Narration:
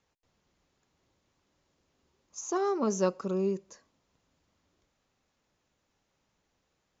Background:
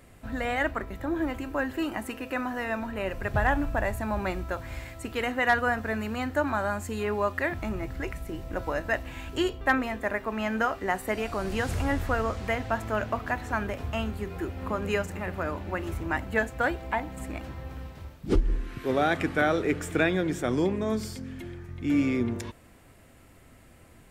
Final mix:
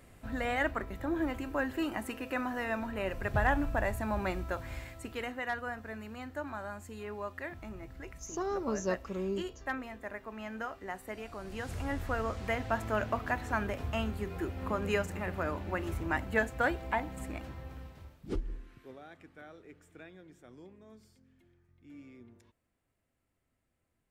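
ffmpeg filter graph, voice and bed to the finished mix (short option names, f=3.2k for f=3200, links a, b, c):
-filter_complex "[0:a]adelay=5850,volume=-5.5dB[a];[1:a]volume=6dB,afade=t=out:st=4.68:d=0.79:silence=0.354813,afade=t=in:st=11.45:d=1.36:silence=0.334965,afade=t=out:st=17.03:d=1.97:silence=0.0630957[b];[a][b]amix=inputs=2:normalize=0"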